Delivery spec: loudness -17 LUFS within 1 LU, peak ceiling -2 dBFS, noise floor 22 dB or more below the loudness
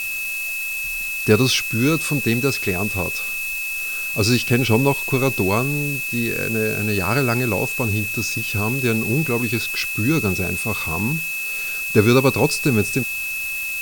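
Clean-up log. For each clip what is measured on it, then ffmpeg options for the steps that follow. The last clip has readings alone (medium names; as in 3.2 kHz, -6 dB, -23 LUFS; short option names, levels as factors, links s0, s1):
steady tone 2.6 kHz; tone level -24 dBFS; noise floor -26 dBFS; noise floor target -42 dBFS; loudness -20.0 LUFS; peak level -1.5 dBFS; loudness target -17.0 LUFS
-> -af "bandreject=f=2600:w=30"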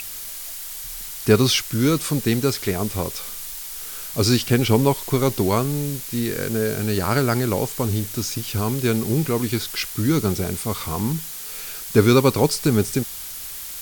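steady tone not found; noise floor -34 dBFS; noise floor target -44 dBFS
-> -af "afftdn=nr=10:nf=-34"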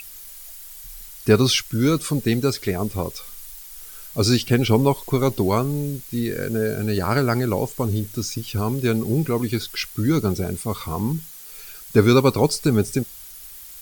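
noise floor -40 dBFS; noise floor target -44 dBFS
-> -af "afftdn=nr=6:nf=-40"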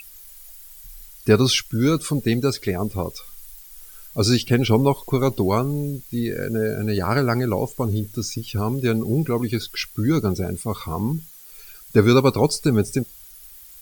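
noise floor -44 dBFS; loudness -22.0 LUFS; peak level -2.0 dBFS; loudness target -17.0 LUFS
-> -af "volume=1.78,alimiter=limit=0.794:level=0:latency=1"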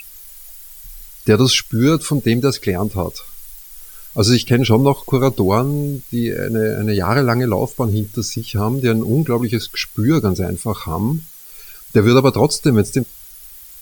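loudness -17.0 LUFS; peak level -2.0 dBFS; noise floor -39 dBFS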